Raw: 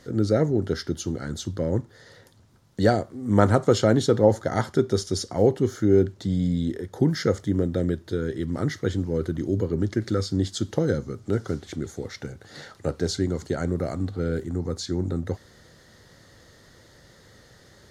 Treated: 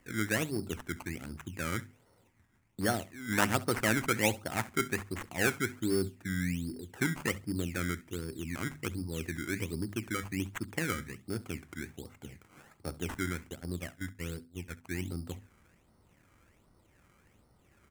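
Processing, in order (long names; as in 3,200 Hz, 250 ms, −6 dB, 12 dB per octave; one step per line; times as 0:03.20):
adaptive Wiener filter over 25 samples
sample-and-hold swept by an LFO 17×, swing 100% 1.3 Hz
graphic EQ with 10 bands 125 Hz −6 dB, 500 Hz −10 dB, 1,000 Hz +3 dB, 2,000 Hz +6 dB, 4,000 Hz −7 dB, 8,000 Hz +4 dB
0:13.49–0:14.85: noise gate −29 dBFS, range −33 dB
mains-hum notches 50/100/150/200/250 Hz
repeating echo 67 ms, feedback 17%, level −20 dB
level −6 dB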